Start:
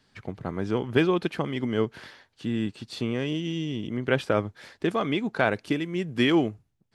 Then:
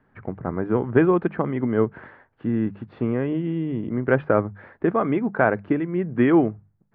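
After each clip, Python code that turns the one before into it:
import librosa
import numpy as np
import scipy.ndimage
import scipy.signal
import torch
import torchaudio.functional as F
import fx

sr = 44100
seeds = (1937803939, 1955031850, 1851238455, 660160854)

y = scipy.signal.sosfilt(scipy.signal.butter(4, 1700.0, 'lowpass', fs=sr, output='sos'), x)
y = fx.hum_notches(y, sr, base_hz=50, count=4)
y = y * 10.0 ** (5.0 / 20.0)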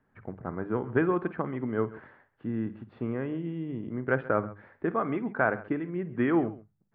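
y = fx.dynamic_eq(x, sr, hz=1400.0, q=1.5, threshold_db=-37.0, ratio=4.0, max_db=5)
y = fx.echo_multitap(y, sr, ms=(53, 134), db=(-16.5, -18.5))
y = y * 10.0 ** (-8.5 / 20.0)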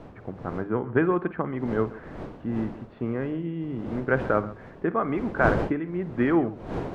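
y = fx.dmg_wind(x, sr, seeds[0], corner_hz=490.0, level_db=-39.0)
y = y * 10.0 ** (3.0 / 20.0)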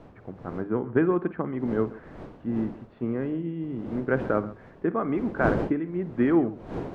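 y = fx.dynamic_eq(x, sr, hz=270.0, q=0.7, threshold_db=-34.0, ratio=4.0, max_db=6)
y = y * 10.0 ** (-4.5 / 20.0)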